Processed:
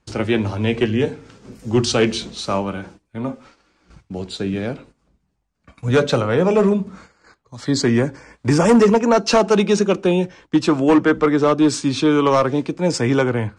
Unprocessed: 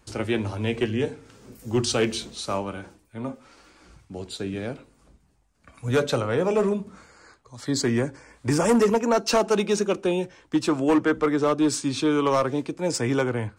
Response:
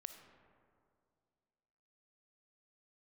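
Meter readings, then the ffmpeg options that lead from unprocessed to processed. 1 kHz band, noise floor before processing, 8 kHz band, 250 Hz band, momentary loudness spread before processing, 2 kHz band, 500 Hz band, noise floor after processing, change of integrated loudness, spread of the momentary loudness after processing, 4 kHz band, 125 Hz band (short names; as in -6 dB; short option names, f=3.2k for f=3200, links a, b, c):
+6.0 dB, -63 dBFS, +2.5 dB, +7.0 dB, 15 LU, +6.0 dB, +6.0 dB, -68 dBFS, +6.5 dB, 14 LU, +5.5 dB, +7.5 dB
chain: -af "lowpass=6.6k,agate=range=-13dB:threshold=-50dB:ratio=16:detection=peak,equalizer=f=180:t=o:w=0.44:g=5,volume=6dB"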